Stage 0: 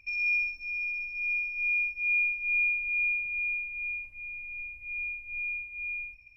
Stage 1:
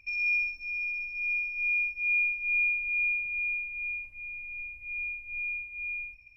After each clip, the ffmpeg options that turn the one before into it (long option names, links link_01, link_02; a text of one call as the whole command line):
ffmpeg -i in.wav -af anull out.wav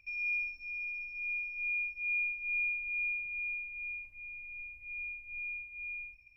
ffmpeg -i in.wav -filter_complex "[0:a]acrossover=split=3800[link_01][link_02];[link_02]acompressor=threshold=-55dB:ratio=4:attack=1:release=60[link_03];[link_01][link_03]amix=inputs=2:normalize=0,volume=-5.5dB" out.wav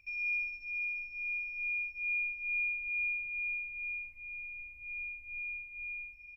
ffmpeg -i in.wav -af "aecho=1:1:447:0.335" out.wav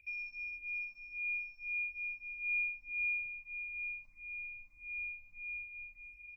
ffmpeg -i in.wav -filter_complex "[0:a]asplit=2[link_01][link_02];[link_02]afreqshift=1.6[link_03];[link_01][link_03]amix=inputs=2:normalize=1" out.wav